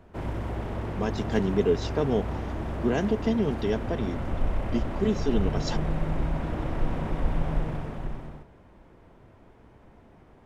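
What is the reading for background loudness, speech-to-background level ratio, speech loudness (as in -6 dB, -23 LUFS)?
-32.5 LUFS, 4.0 dB, -28.5 LUFS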